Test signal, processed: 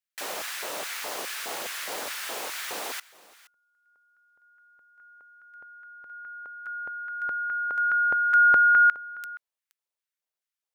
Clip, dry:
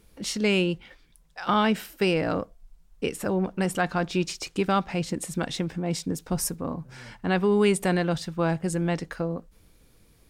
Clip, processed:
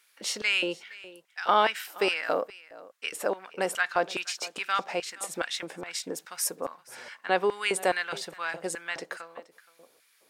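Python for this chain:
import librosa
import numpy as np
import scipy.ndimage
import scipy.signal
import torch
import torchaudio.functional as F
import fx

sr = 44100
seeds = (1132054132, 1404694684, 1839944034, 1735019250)

p1 = x + fx.echo_single(x, sr, ms=472, db=-20.5, dry=0)
y = fx.filter_lfo_highpass(p1, sr, shape='square', hz=2.4, low_hz=530.0, high_hz=1600.0, q=1.5)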